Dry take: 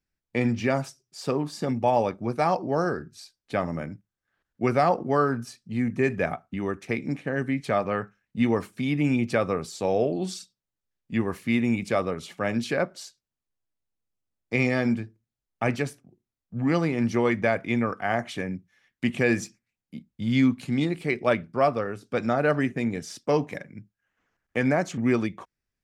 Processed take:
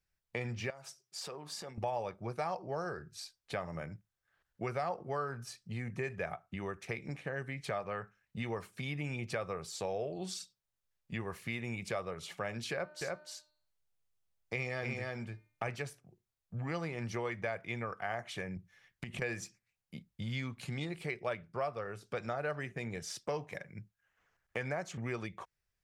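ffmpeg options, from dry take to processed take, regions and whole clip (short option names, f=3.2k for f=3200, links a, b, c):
-filter_complex "[0:a]asettb=1/sr,asplit=3[a][b][c];[a]atrim=end=0.704[d];[b]atrim=start=0.7:end=1.78,asetpts=PTS-STARTPTS,afade=t=in:d=0.004:c=qsin,afade=t=out:st=1.076:d=0.004:c=qsin,acompressor=threshold=-37dB:ratio=4:attack=3.2:release=140:knee=1:detection=peak,highpass=f=280:p=1[e];[c]atrim=start=1.776[f];[d][e]acrossfade=d=0.004:c1=hsin:c2=qsin[g];[g][f]acrossfade=d=0.004:c1=qsin:c2=hsin,asettb=1/sr,asplit=3[h][i][j];[h]atrim=end=12.714[k];[i]atrim=start=12.71:end=15.68,asetpts=PTS-STARTPTS,afade=t=in:d=0.004:c=qsin,afade=t=out:st=2.966:d=0.004:c=qsin,bandreject=f=302.5:t=h:w=4,bandreject=f=605:t=h:w=4,bandreject=f=907.5:t=h:w=4,bandreject=f=1.21k:t=h:w=4,bandreject=f=1.5125k:t=h:w=4,bandreject=f=1.815k:t=h:w=4,bandreject=f=2.1175k:t=h:w=4,bandreject=f=2.42k:t=h:w=4,bandreject=f=2.7225k:t=h:w=4,bandreject=f=3.025k:t=h:w=4,bandreject=f=3.3275k:t=h:w=4,bandreject=f=3.63k:t=h:w=4,bandreject=f=3.9325k:t=h:w=4,bandreject=f=4.235k:t=h:w=4,bandreject=f=4.5375k:t=h:w=4,aecho=1:1:302:0.631,atrim=end_sample=130977[l];[j]atrim=start=15.676[m];[k][l]acrossfade=d=0.004:c1=hsin:c2=qsin[n];[n][m]acrossfade=d=0.004:c1=qsin:c2=hsin,asettb=1/sr,asplit=3[o][p][q];[o]atrim=end=18.564[r];[p]atrim=start=18.56:end=19.22,asetpts=PTS-STARTPTS,afade=t=in:d=0.004:c=qsin,afade=t=out:st=0.656:d=0.004:c=qsin,acompressor=threshold=-34dB:ratio=12:attack=3.2:release=140:knee=1:detection=peak,lowshelf=f=330:g=7[s];[q]atrim=start=19.216[t];[r][s]acrossfade=d=0.004:c1=hsin:c2=qsin[u];[u][t]acrossfade=d=0.004:c1=qsin:c2=hsin,equalizer=f=260:w=2.1:g=-14.5,acompressor=threshold=-39dB:ratio=2.5"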